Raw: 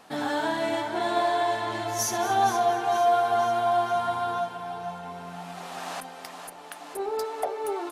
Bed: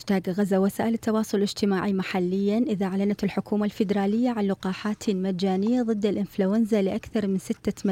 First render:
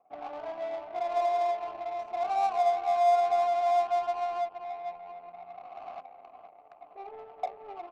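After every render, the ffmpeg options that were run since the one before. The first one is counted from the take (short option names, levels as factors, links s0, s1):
-filter_complex "[0:a]asplit=3[s0][s1][s2];[s0]bandpass=f=730:t=q:w=8,volume=1[s3];[s1]bandpass=f=1090:t=q:w=8,volume=0.501[s4];[s2]bandpass=f=2440:t=q:w=8,volume=0.355[s5];[s3][s4][s5]amix=inputs=3:normalize=0,adynamicsmooth=sensitivity=6.5:basefreq=500"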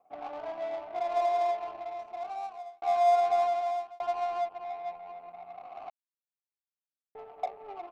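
-filter_complex "[0:a]asplit=5[s0][s1][s2][s3][s4];[s0]atrim=end=2.82,asetpts=PTS-STARTPTS,afade=t=out:st=1.49:d=1.33[s5];[s1]atrim=start=2.82:end=4,asetpts=PTS-STARTPTS,afade=t=in:d=0.004:c=hsin,afade=t=out:st=0.62:d=0.56[s6];[s2]atrim=start=4:end=5.9,asetpts=PTS-STARTPTS,afade=t=in:d=0.004:c=hsin,afade=t=out:st=1.896:d=0.004:c=hsin[s7];[s3]atrim=start=5.9:end=7.15,asetpts=PTS-STARTPTS,volume=0[s8];[s4]atrim=start=7.15,asetpts=PTS-STARTPTS,afade=t=in:d=0.004:c=hsin[s9];[s5][s6][s7][s8][s9]concat=n=5:v=0:a=1"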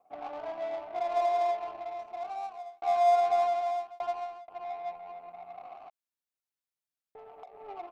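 -filter_complex "[0:a]asettb=1/sr,asplit=3[s0][s1][s2];[s0]atrim=end=5.754[s3];[s1]atrim=start=5.75:end=7.55,asetpts=PTS-STARTPTS,afade=t=in:d=0.004:c=qsin,afade=t=out:st=1.796:d=0.004:c=qsin,acompressor=threshold=0.00562:ratio=6:attack=3.2:release=140:knee=1:detection=peak[s4];[s2]atrim=start=7.546[s5];[s3][s4]acrossfade=d=0.004:c1=hsin:c2=qsin[s6];[s6][s5]acrossfade=d=0.004:c1=qsin:c2=hsin,asplit=2[s7][s8];[s7]atrim=end=4.48,asetpts=PTS-STARTPTS,afade=t=out:st=4.01:d=0.47[s9];[s8]atrim=start=4.48,asetpts=PTS-STARTPTS,afade=t=in:d=0.004:c=hsin[s10];[s9][s10]concat=n=2:v=0:a=1"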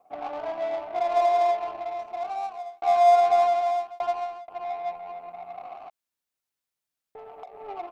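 -af "volume=2"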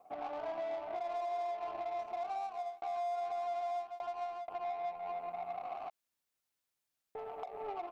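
-af "acompressor=threshold=0.0126:ratio=2,alimiter=level_in=2.51:limit=0.0631:level=0:latency=1:release=178,volume=0.398"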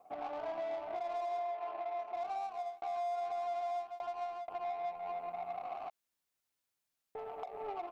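-filter_complex "[0:a]asettb=1/sr,asplit=3[s0][s1][s2];[s0]atrim=end=1.394[s3];[s1]atrim=start=1.39:end=2.15,asetpts=PTS-STARTPTS,afade=t=in:d=0.004:c=qsin,afade=t=out:st=0.756:d=0.004:c=qsin,bass=f=250:g=-14,treble=f=4000:g=-11[s4];[s2]atrim=start=2.146[s5];[s3][s4]acrossfade=d=0.004:c1=hsin:c2=qsin[s6];[s6][s5]acrossfade=d=0.004:c1=qsin:c2=hsin"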